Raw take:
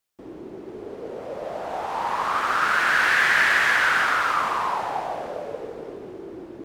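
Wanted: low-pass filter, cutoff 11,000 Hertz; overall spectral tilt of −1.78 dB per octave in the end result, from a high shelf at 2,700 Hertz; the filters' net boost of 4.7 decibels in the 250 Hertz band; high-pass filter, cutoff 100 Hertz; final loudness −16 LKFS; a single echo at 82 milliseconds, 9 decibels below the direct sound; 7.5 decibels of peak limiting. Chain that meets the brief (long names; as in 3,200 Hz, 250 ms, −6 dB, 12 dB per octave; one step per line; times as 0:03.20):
high-pass filter 100 Hz
low-pass filter 11,000 Hz
parametric band 250 Hz +6.5 dB
high-shelf EQ 2,700 Hz +7.5 dB
brickwall limiter −12.5 dBFS
single-tap delay 82 ms −9 dB
level +6 dB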